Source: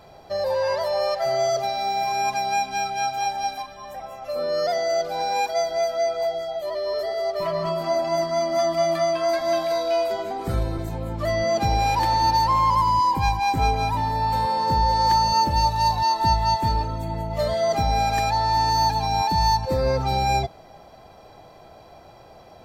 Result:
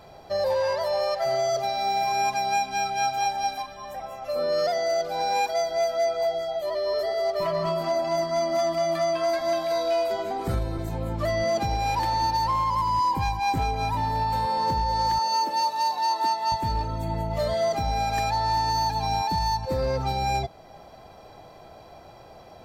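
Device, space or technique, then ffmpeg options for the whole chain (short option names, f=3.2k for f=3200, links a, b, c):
limiter into clipper: -filter_complex "[0:a]asettb=1/sr,asplit=3[a][b][c];[a]atrim=end=15.194[d];[b]atrim=start=15.19:end=16.52,asetpts=PTS-STARTPTS,afade=t=in:d=0.004:c=qsin,afade=t=out:st=1.326:d=0.004:c=qsin,highpass=f=290:w=0.5412,highpass=f=290:w=1.3066[e];[c]atrim=start=16.516[f];[d][e]acrossfade=d=0.004:c1=hsin:c2=qsin[g];[g][f]acrossfade=d=0.004:c1=qsin:c2=hsin,alimiter=limit=-16.5dB:level=0:latency=1:release=423,asoftclip=type=hard:threshold=-18.5dB"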